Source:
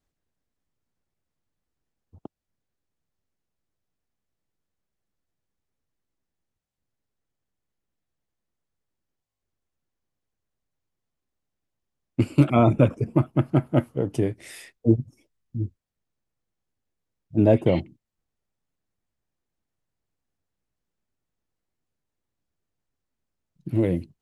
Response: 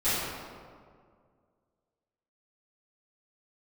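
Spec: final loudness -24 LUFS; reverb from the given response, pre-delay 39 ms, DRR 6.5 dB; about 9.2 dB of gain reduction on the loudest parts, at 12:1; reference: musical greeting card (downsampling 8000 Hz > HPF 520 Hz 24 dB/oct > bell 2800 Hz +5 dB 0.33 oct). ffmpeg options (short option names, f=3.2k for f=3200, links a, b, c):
-filter_complex "[0:a]acompressor=threshold=-21dB:ratio=12,asplit=2[a][b];[1:a]atrim=start_sample=2205,adelay=39[c];[b][c]afir=irnorm=-1:irlink=0,volume=-19dB[d];[a][d]amix=inputs=2:normalize=0,aresample=8000,aresample=44100,highpass=f=520:w=0.5412,highpass=f=520:w=1.3066,equalizer=f=2.8k:t=o:w=0.33:g=5,volume=13.5dB"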